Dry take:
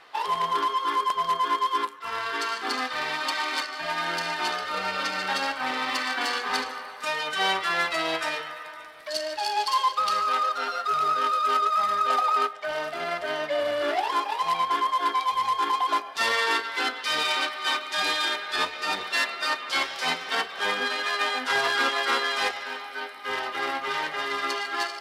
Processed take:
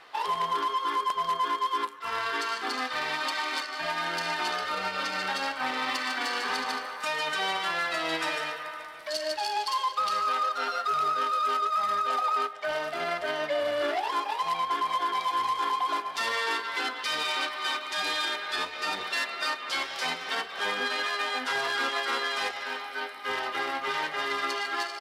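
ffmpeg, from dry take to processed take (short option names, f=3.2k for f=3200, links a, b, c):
-filter_complex "[0:a]asplit=3[a][b][c];[a]afade=t=out:st=6.07:d=0.02[d];[b]aecho=1:1:149:0.501,afade=t=in:st=6.07:d=0.02,afade=t=out:st=9.32:d=0.02[e];[c]afade=t=in:st=9.32:d=0.02[f];[d][e][f]amix=inputs=3:normalize=0,asplit=2[g][h];[h]afade=t=in:st=14.5:d=0.01,afade=t=out:st=15.08:d=0.01,aecho=0:1:310|620|930|1240|1550|1860|2170|2480|2790|3100|3410|3720:0.595662|0.416964|0.291874|0.204312|0.143018|0.100113|0.0700791|0.0490553|0.0343387|0.0240371|0.016826|0.0117782[i];[g][i]amix=inputs=2:normalize=0,alimiter=limit=-20dB:level=0:latency=1:release=163"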